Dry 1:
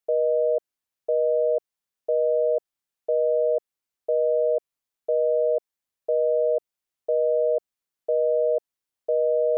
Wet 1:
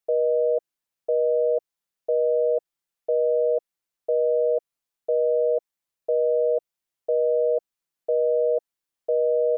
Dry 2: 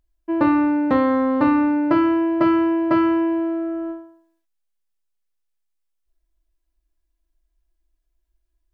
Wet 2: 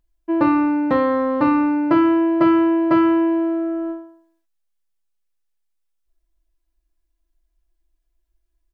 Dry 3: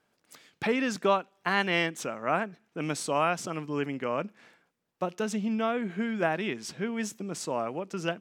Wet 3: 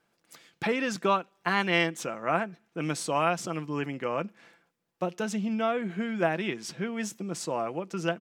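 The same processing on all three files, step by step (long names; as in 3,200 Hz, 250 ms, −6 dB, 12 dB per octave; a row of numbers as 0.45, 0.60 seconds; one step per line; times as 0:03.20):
comb filter 5.9 ms, depth 33%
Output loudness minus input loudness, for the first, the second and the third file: +0.5, +1.5, +0.5 LU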